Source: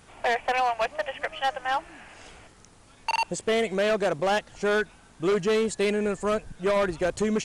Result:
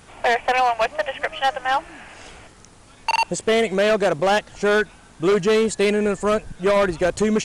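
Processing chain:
floating-point word with a short mantissa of 8 bits
level +6 dB

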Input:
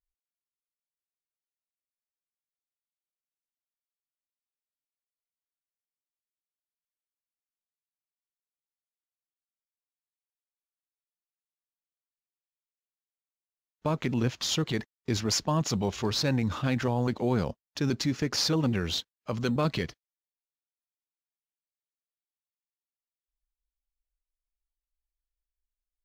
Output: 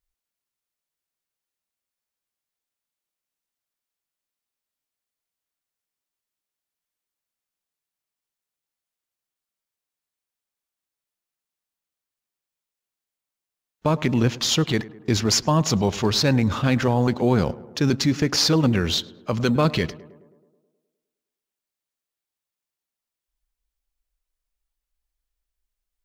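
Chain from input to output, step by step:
tape delay 105 ms, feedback 69%, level −16.5 dB, low-pass 1,400 Hz
level +7.5 dB

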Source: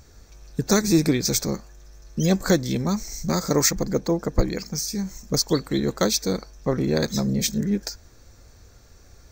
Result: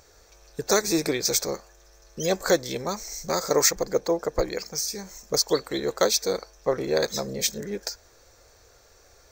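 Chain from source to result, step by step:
low shelf with overshoot 330 Hz −11 dB, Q 1.5

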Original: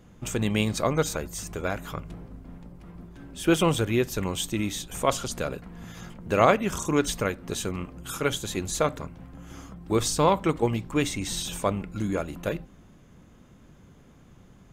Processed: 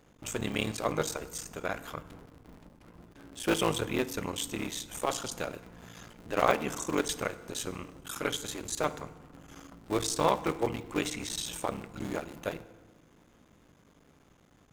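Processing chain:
sub-harmonics by changed cycles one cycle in 3, muted
low-shelf EQ 220 Hz −9 dB
feedback delay network reverb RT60 1.3 s, low-frequency decay 1.5×, high-frequency decay 0.7×, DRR 13.5 dB
level −2.5 dB

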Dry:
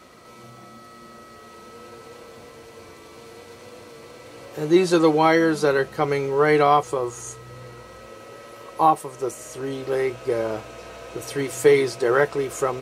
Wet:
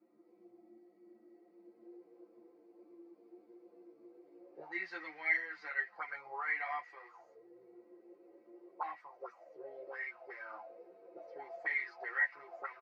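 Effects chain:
comb filter 5.8 ms, depth 74%
envelope filter 290–1,900 Hz, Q 6.9, up, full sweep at −17.5 dBFS
loudspeaker in its box 200–5,500 Hz, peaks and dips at 480 Hz −3 dB, 750 Hz +9 dB, 2,100 Hz +7 dB, 3,300 Hz −6 dB, 4,800 Hz +9 dB
string-ensemble chorus
level −5.5 dB

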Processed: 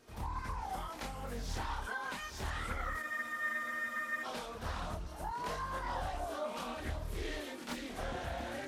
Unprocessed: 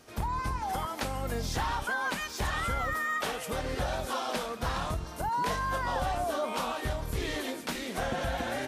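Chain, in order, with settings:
multi-voice chorus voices 6, 0.27 Hz, delay 27 ms, depth 2.5 ms
backwards echo 88 ms −12 dB
frozen spectrum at 0:03.04, 1.19 s
highs frequency-modulated by the lows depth 0.44 ms
level −5.5 dB

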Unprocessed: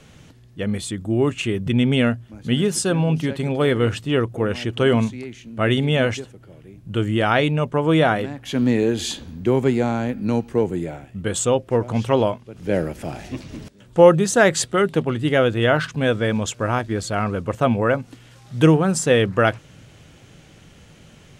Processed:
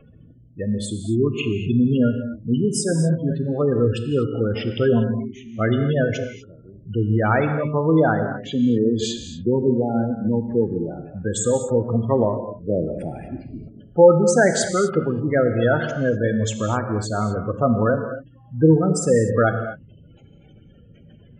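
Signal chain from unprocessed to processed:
gate on every frequency bin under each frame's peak −15 dB strong
reverb whose tail is shaped and stops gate 270 ms flat, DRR 6.5 dB
level −1 dB

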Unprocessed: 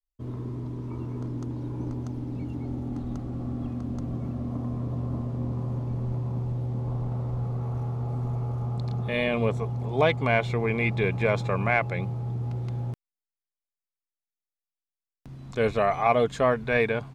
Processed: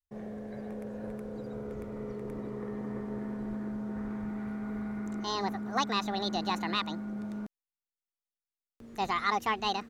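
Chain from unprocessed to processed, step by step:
wrong playback speed 45 rpm record played at 78 rpm
level −7 dB

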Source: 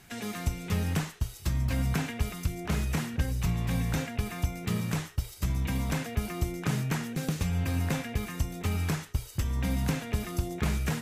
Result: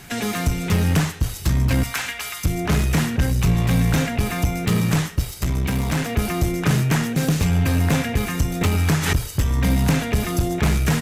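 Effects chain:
0:01.83–0:02.44: high-pass filter 1,200 Hz 12 dB per octave
far-end echo of a speakerphone 280 ms, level −20 dB
in parallel at −4.5 dB: asymmetric clip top −37 dBFS
0:05.24–0:06.10: on the sum: tube saturation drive 24 dB, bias 0.45
sine wavefolder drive 4 dB, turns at −13 dBFS
on a send at −19 dB: convolution reverb RT60 0.80 s, pre-delay 7 ms
0:08.61–0:09.26: on the sum: background raised ahead of every attack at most 59 dB per second
level +1 dB

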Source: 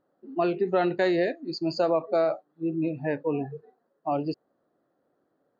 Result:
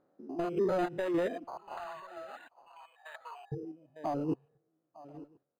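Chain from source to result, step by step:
spectrum averaged block by block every 100 ms
single-tap delay 904 ms −19 dB
soft clipping −23 dBFS, distortion −13 dB
downward compressor, threshold −30 dBFS, peak gain reduction 5 dB
0:01.44–0:03.52: Butterworth high-pass 840 Hz 36 dB per octave
single-tap delay 1,034 ms −21.5 dB
0:01.82–0:02.45: healed spectral selection 1,400–4,100 Hz before
sample-and-hold tremolo
reverb reduction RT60 1.6 s
linearly interpolated sample-rate reduction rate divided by 8×
level +6 dB

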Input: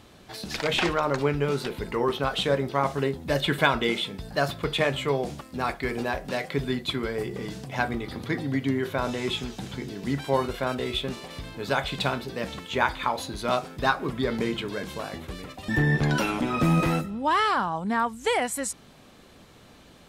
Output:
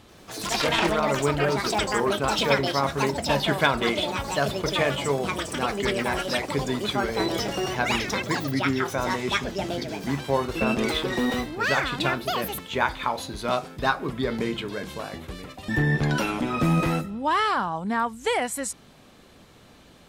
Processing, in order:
delay with pitch and tempo change per echo 86 ms, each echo +7 semitones, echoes 2

